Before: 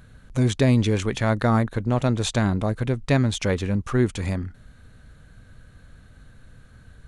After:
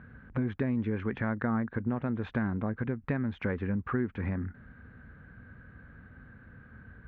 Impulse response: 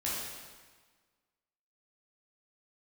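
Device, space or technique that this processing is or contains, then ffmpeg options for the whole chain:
bass amplifier: -af "acompressor=threshold=-28dB:ratio=6,highpass=65,equalizer=frequency=120:width_type=q:width=4:gain=-3,equalizer=frequency=230:width_type=q:width=4:gain=5,equalizer=frequency=630:width_type=q:width=4:gain=-5,equalizer=frequency=1600:width_type=q:width=4:gain=5,lowpass=frequency=2100:width=0.5412,lowpass=frequency=2100:width=1.3066"

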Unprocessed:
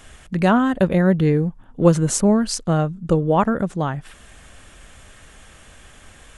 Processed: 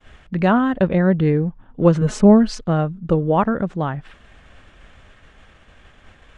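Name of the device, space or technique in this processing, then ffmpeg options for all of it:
hearing-loss simulation: -filter_complex "[0:a]asettb=1/sr,asplit=3[link_01][link_02][link_03];[link_01]atrim=end=2.014[link_04];[link_02]atrim=start=2.01:end=2.61,asetpts=PTS-STARTPTS,afade=type=in:duration=0.004:curve=qsin,afade=type=out:start_time=0.596:duration=0.004:curve=qsin,aecho=1:1:4.7:0.89,atrim=end_sample=26460[link_05];[link_03]atrim=start=2.606[link_06];[link_04][link_05]acrossfade=duration=0.004:curve1=hsin:curve2=qsin[link_07];[link_07][link_06]acrossfade=duration=0.004:curve1=qsin:curve2=hsin,lowpass=3400,agate=range=-33dB:threshold=-42dB:ratio=3:detection=peak"

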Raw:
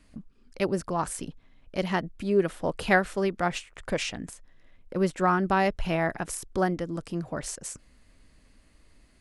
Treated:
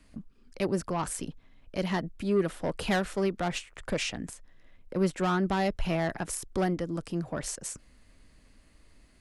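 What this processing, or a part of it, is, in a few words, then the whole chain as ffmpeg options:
one-band saturation: -filter_complex "[0:a]acrossover=split=290|3700[link_01][link_02][link_03];[link_02]asoftclip=type=tanh:threshold=-25dB[link_04];[link_01][link_04][link_03]amix=inputs=3:normalize=0"

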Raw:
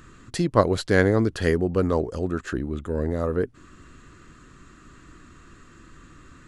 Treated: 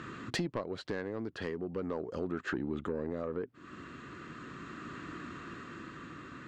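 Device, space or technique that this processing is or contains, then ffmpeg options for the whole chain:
AM radio: -af "highpass=150,lowpass=3700,acompressor=threshold=-37dB:ratio=10,asoftclip=type=tanh:threshold=-31dB,tremolo=f=0.39:d=0.32,volume=7.5dB"

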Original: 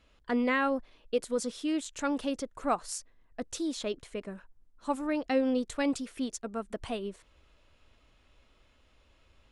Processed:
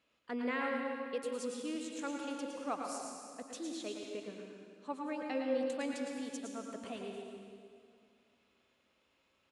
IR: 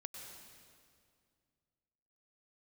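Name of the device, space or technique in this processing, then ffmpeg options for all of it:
PA in a hall: -filter_complex "[0:a]asettb=1/sr,asplit=3[link_01][link_02][link_03];[link_01]atrim=end=3.864[link_04];[link_02]atrim=start=3.86:end=5.52,asetpts=PTS-STARTPTS,afade=type=in:duration=0.004:curve=qsin,afade=type=out:start_time=1.656:duration=0.004:curve=qsin,lowpass=6300[link_05];[link_03]atrim=start=5.516[link_06];[link_04][link_05]acrossfade=duration=0.004:curve1=hsin:curve2=qsin[link_07];[link_07][link_06]acrossfade=duration=0.004:curve1=qsin:curve2=hsin,highpass=180,equalizer=frequency=2500:width_type=o:width=0.27:gain=3,aecho=1:1:111:0.447[link_08];[1:a]atrim=start_sample=2205[link_09];[link_08][link_09]afir=irnorm=-1:irlink=0,volume=-4dB"

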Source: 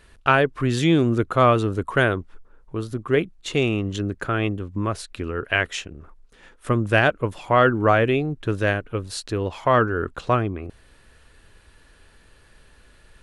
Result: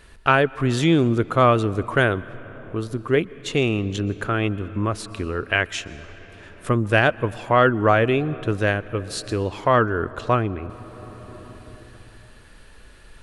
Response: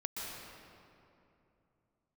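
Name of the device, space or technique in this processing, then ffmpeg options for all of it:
ducked reverb: -filter_complex "[0:a]asplit=3[link_01][link_02][link_03];[1:a]atrim=start_sample=2205[link_04];[link_02][link_04]afir=irnorm=-1:irlink=0[link_05];[link_03]apad=whole_len=583268[link_06];[link_05][link_06]sidechaincompress=threshold=-35dB:ratio=4:attack=5.1:release=821,volume=-2.5dB[link_07];[link_01][link_07]amix=inputs=2:normalize=0"

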